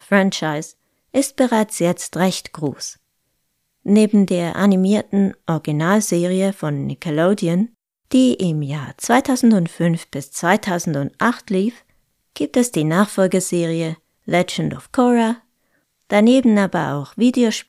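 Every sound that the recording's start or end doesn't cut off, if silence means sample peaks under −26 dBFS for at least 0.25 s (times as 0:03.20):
0:01.14–0:02.90
0:03.86–0:07.66
0:08.11–0:11.70
0:12.36–0:13.94
0:14.28–0:15.34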